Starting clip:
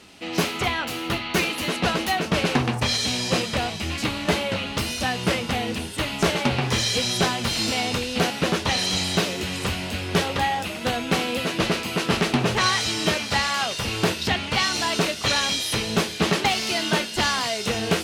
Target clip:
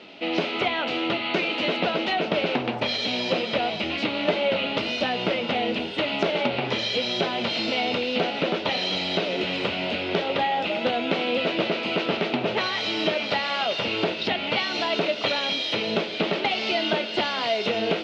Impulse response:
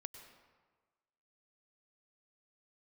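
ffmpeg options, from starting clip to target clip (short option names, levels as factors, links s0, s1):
-filter_complex "[0:a]bandreject=f=770:w=24,asplit=2[s0][s1];[1:a]atrim=start_sample=2205,asetrate=52920,aresample=44100[s2];[s1][s2]afir=irnorm=-1:irlink=0,volume=0.596[s3];[s0][s3]amix=inputs=2:normalize=0,acompressor=threshold=0.0708:ratio=6,highpass=250,equalizer=f=610:t=q:w=4:g=5,equalizer=f=1100:t=q:w=4:g=-7,equalizer=f=1700:t=q:w=4:g=-7,lowpass=f=3700:w=0.5412,lowpass=f=3700:w=1.3066,volume=1.58"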